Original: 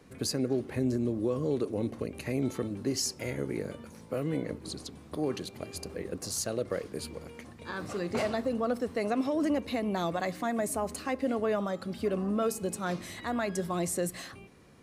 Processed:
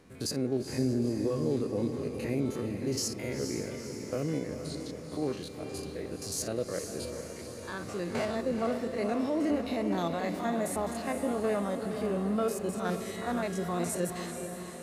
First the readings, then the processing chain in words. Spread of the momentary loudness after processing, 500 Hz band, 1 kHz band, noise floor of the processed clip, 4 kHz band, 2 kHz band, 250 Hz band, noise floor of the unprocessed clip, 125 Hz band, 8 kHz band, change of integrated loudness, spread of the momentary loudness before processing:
9 LU, 0.0 dB, −0.5 dB, −43 dBFS, −1.0 dB, −1.0 dB, +0.5 dB, −51 dBFS, +0.5 dB, −1.0 dB, −0.5 dB, 10 LU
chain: spectrum averaged block by block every 50 ms
feedback delay with all-pass diffusion 467 ms, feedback 56%, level −7 dB

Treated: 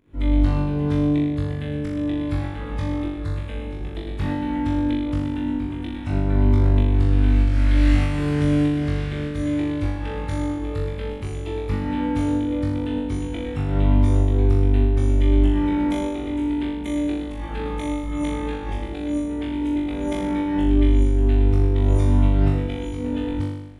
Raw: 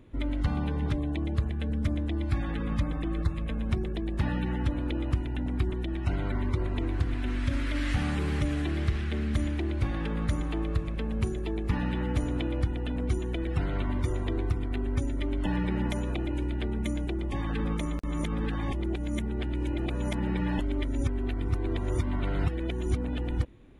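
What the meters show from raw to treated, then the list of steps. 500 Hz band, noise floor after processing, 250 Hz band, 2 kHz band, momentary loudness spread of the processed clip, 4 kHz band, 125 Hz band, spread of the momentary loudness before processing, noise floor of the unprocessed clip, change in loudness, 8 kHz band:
+8.0 dB, −30 dBFS, +9.0 dB, +3.0 dB, 10 LU, +3.5 dB, +7.5 dB, 2 LU, −32 dBFS, +8.0 dB, can't be measured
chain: fake sidechain pumping 97 BPM, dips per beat 1, −16 dB, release 209 ms
flutter between parallel walls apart 3.5 metres, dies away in 0.94 s
level −1.5 dB

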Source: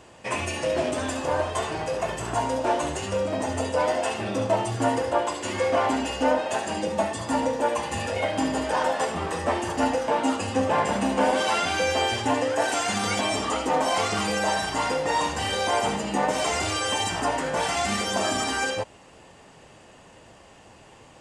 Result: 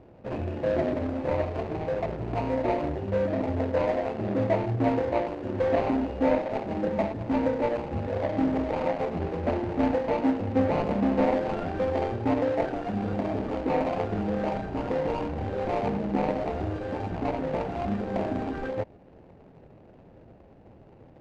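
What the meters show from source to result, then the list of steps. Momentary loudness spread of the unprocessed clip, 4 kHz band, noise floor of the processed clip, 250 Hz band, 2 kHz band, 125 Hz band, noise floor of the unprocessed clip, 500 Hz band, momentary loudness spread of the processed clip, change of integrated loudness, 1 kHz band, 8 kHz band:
5 LU, −18.5 dB, −52 dBFS, +2.0 dB, −10.5 dB, +3.0 dB, −51 dBFS, −1.0 dB, 6 LU, −3.0 dB, −7.0 dB, below −25 dB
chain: running median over 41 samples
head-to-tape spacing loss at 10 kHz 25 dB
level +3 dB

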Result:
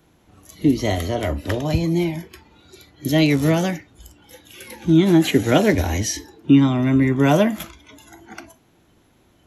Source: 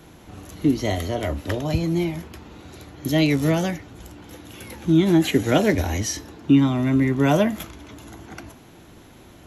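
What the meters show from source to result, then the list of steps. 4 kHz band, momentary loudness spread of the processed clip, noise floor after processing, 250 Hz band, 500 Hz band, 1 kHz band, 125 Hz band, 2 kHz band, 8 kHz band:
+2.5 dB, 13 LU, −58 dBFS, +2.5 dB, +2.5 dB, +2.5 dB, +2.5 dB, +2.5 dB, +2.5 dB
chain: noise reduction from a noise print of the clip's start 13 dB
level +2.5 dB

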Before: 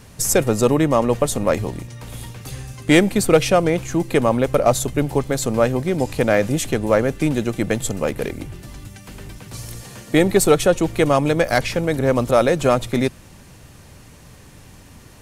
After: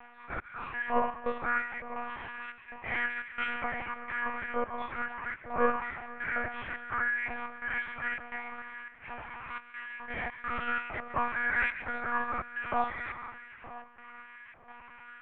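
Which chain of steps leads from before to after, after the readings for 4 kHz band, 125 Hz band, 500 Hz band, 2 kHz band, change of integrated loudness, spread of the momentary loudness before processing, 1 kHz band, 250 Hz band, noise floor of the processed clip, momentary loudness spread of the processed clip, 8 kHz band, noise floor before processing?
−20.5 dB, −28.5 dB, −21.5 dB, −4.0 dB, −15.5 dB, 19 LU, −8.0 dB, −24.5 dB, −53 dBFS, 16 LU, below −40 dB, −45 dBFS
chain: every bin's largest magnitude spread in time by 120 ms
reversed playback
downward compressor 6 to 1, threshold −20 dBFS, peak gain reduction 15 dB
reversed playback
tuned comb filter 290 Hz, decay 0.32 s, harmonics all, mix 90%
gate pattern "xxxxx..xx" 191 BPM −24 dB
on a send: echo with a time of its own for lows and highs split 1,400 Hz, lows 478 ms, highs 145 ms, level −11.5 dB
on the sum: single-sideband voice off tune −71 Hz 160–2,600 Hz
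high-frequency loss of the air 69 metres
auto-filter high-pass saw up 1.1 Hz 810–1,900 Hz
one-pitch LPC vocoder at 8 kHz 240 Hz
level +9 dB

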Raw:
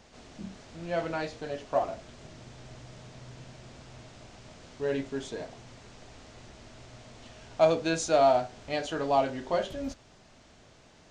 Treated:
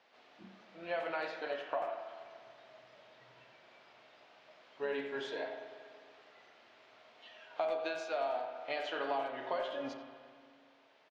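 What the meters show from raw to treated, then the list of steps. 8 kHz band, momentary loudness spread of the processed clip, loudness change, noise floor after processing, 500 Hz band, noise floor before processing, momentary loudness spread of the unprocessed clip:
below −20 dB, 21 LU, −9.5 dB, −64 dBFS, −9.5 dB, −57 dBFS, 24 LU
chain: sub-octave generator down 1 octave, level −5 dB
high-pass filter 540 Hz 12 dB per octave
noise reduction from a noise print of the clip's start 10 dB
high-shelf EQ 2,200 Hz +9 dB
downward compressor 12 to 1, threshold −34 dBFS, peak gain reduction 17.5 dB
high-frequency loss of the air 340 metres
far-end echo of a speakerphone 90 ms, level −8 dB
spring reverb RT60 2.2 s, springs 36/47 ms, chirp 55 ms, DRR 6.5 dB
level +2.5 dB

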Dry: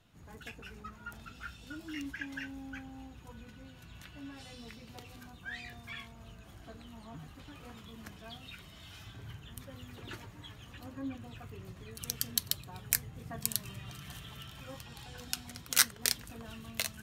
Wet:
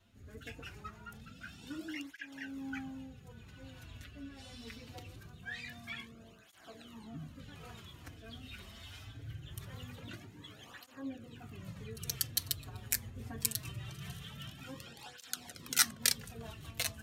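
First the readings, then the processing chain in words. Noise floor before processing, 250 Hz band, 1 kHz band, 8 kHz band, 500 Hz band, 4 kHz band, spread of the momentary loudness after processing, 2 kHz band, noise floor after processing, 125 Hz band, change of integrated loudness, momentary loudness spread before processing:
−54 dBFS, −0.5 dB, −2.0 dB, −1.5 dB, −1.5 dB, −1.5 dB, 18 LU, −2.0 dB, −57 dBFS, +0.5 dB, −2.0 dB, 18 LU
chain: rotating-speaker cabinet horn 1 Hz, later 5 Hz, at 0:11.64
hum removal 60.54 Hz, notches 20
through-zero flanger with one copy inverted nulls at 0.23 Hz, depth 6.8 ms
level +5 dB

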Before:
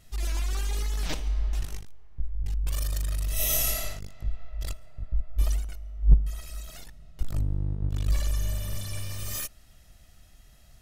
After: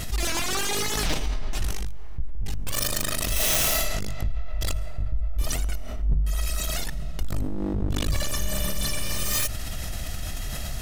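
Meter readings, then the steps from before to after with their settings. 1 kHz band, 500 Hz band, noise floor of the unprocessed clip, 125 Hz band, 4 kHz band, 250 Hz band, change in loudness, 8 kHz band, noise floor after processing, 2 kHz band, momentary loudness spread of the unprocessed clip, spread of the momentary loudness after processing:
+11.0 dB, +10.0 dB, −54 dBFS, 0.0 dB, +10.0 dB, +9.5 dB, +3.0 dB, +7.0 dB, −30 dBFS, +10.5 dB, 15 LU, 10 LU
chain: stylus tracing distortion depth 0.074 ms
mains-hum notches 50/100/150 Hz
envelope flattener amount 70%
level −2.5 dB

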